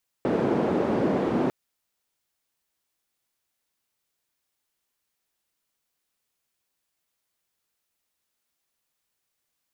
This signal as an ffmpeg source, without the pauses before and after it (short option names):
-f lavfi -i "anoisesrc=c=white:d=1.25:r=44100:seed=1,highpass=f=240,lowpass=f=340,volume=2.5dB"